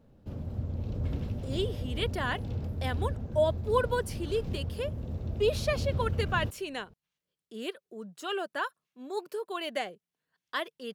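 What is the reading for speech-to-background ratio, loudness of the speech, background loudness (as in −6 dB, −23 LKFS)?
2.5 dB, −33.5 LKFS, −36.0 LKFS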